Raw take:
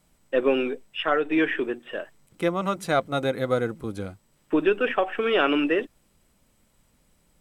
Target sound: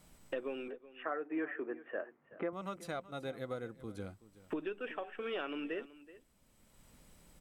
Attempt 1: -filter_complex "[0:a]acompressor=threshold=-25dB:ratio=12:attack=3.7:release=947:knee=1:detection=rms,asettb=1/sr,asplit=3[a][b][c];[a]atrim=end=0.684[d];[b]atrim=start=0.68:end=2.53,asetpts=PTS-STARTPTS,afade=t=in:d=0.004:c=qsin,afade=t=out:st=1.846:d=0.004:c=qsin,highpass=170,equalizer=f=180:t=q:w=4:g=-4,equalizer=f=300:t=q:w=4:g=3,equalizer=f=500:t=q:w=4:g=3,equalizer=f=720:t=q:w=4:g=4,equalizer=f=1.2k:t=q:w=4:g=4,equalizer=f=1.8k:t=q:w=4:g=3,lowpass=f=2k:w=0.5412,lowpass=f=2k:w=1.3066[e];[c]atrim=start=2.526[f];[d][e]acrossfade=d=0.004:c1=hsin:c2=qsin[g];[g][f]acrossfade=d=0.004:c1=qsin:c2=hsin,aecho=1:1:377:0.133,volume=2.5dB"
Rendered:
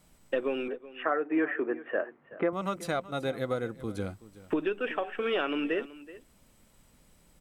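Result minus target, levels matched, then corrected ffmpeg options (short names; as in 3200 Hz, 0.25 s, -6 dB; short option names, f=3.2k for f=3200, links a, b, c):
compressor: peak gain reduction -9.5 dB
-filter_complex "[0:a]acompressor=threshold=-35.5dB:ratio=12:attack=3.7:release=947:knee=1:detection=rms,asettb=1/sr,asplit=3[a][b][c];[a]atrim=end=0.684[d];[b]atrim=start=0.68:end=2.53,asetpts=PTS-STARTPTS,afade=t=in:d=0.004:c=qsin,afade=t=out:st=1.846:d=0.004:c=qsin,highpass=170,equalizer=f=180:t=q:w=4:g=-4,equalizer=f=300:t=q:w=4:g=3,equalizer=f=500:t=q:w=4:g=3,equalizer=f=720:t=q:w=4:g=4,equalizer=f=1.2k:t=q:w=4:g=4,equalizer=f=1.8k:t=q:w=4:g=3,lowpass=f=2k:w=0.5412,lowpass=f=2k:w=1.3066[e];[c]atrim=start=2.526[f];[d][e]acrossfade=d=0.004:c1=hsin:c2=qsin[g];[g][f]acrossfade=d=0.004:c1=qsin:c2=hsin,aecho=1:1:377:0.133,volume=2.5dB"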